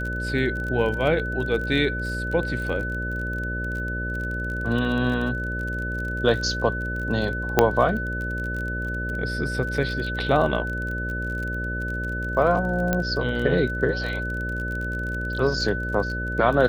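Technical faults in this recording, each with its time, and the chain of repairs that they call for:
buzz 60 Hz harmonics 10 -30 dBFS
crackle 31 per s -30 dBFS
whine 1.5 kHz -29 dBFS
7.59 s: pop -2 dBFS
12.93 s: pop -9 dBFS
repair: de-click; de-hum 60 Hz, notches 10; band-stop 1.5 kHz, Q 30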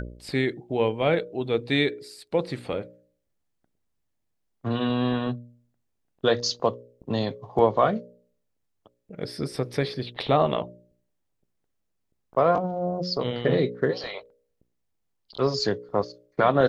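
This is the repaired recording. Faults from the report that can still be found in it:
7.59 s: pop

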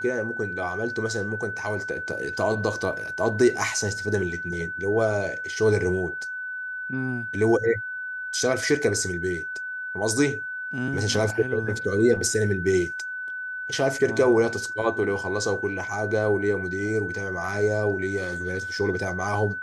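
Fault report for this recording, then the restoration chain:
whine 1.5 kHz -30 dBFS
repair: band-stop 1.5 kHz, Q 30

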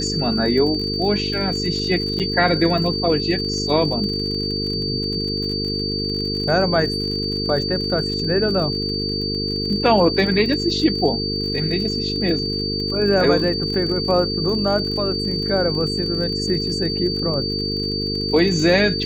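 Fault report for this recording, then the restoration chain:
buzz 50 Hz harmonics 9 -26 dBFS
crackle 49 per s -28 dBFS
whine 4.6 kHz -24 dBFS
2.19–2.20 s: dropout 7.5 ms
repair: de-click; de-hum 50 Hz, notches 9; band-stop 4.6 kHz, Q 30; interpolate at 2.19 s, 7.5 ms

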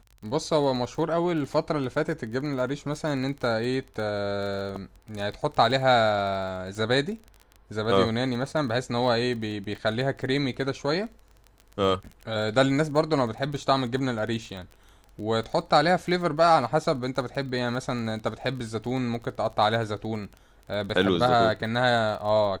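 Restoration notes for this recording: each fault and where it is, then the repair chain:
crackle 23 per s -34 dBFS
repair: de-click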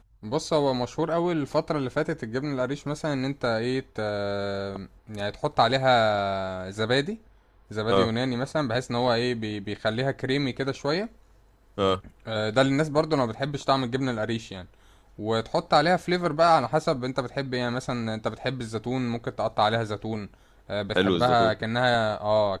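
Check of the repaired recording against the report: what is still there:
nothing left

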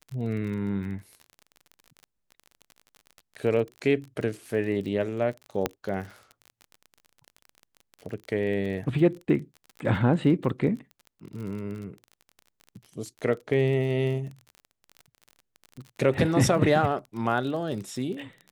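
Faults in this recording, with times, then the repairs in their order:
crackle 34 per s -35 dBFS
5.66 s: pop -10 dBFS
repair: de-click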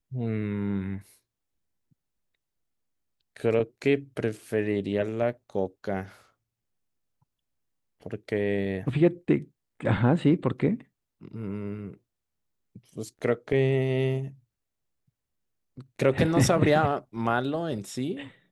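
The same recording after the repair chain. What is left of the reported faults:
nothing left

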